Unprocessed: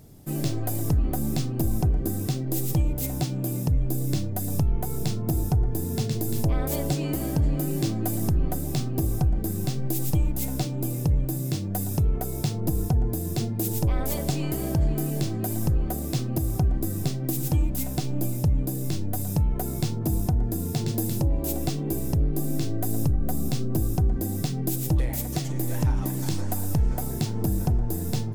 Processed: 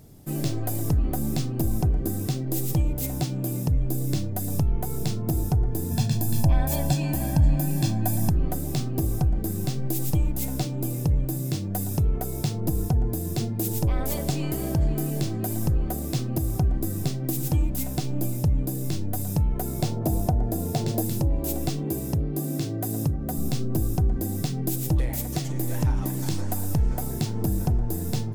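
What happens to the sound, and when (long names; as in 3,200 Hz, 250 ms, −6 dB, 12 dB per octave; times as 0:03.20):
0:05.91–0:08.30: comb filter 1.2 ms, depth 73%
0:19.79–0:21.02: parametric band 640 Hz +10 dB
0:21.84–0:23.38: high-pass filter 68 Hz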